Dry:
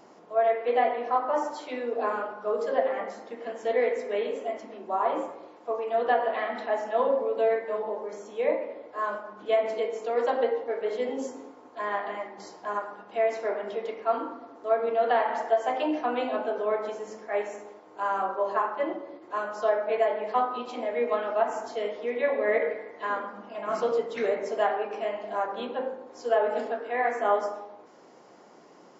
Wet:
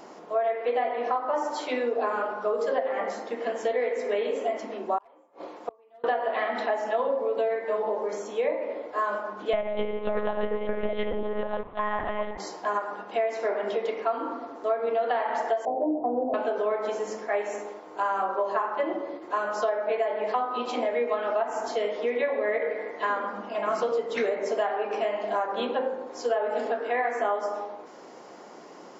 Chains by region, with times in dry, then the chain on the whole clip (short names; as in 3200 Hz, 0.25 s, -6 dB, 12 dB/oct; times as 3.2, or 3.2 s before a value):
4.98–6.04 overloaded stage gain 19.5 dB + flipped gate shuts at -27 dBFS, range -34 dB
9.53–12.38 reverse delay 0.696 s, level -9 dB + monotone LPC vocoder at 8 kHz 210 Hz
15.65–16.34 steep low-pass 790 Hz + low shelf 150 Hz +9 dB
whole clip: bell 100 Hz -6 dB 1.8 oct; compressor, threshold -31 dBFS; gain +7.5 dB